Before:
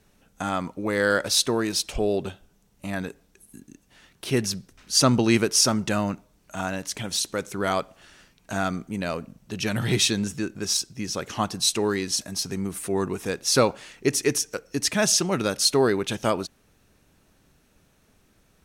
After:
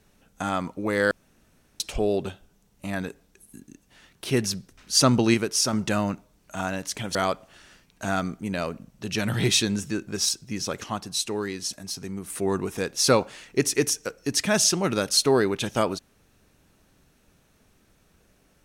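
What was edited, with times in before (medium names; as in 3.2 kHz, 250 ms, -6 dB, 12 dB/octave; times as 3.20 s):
1.11–1.80 s: room tone
5.34–5.73 s: gain -4 dB
7.15–7.63 s: delete
11.32–12.78 s: gain -5 dB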